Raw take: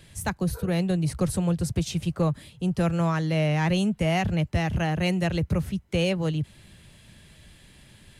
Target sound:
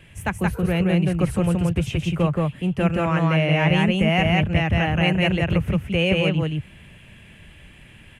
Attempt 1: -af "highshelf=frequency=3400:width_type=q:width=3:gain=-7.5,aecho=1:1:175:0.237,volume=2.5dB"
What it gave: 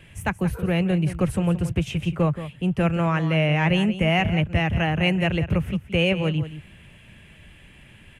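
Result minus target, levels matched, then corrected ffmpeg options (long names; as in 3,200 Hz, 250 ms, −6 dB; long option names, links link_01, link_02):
echo-to-direct −11 dB
-af "highshelf=frequency=3400:width_type=q:width=3:gain=-7.5,aecho=1:1:175:0.841,volume=2.5dB"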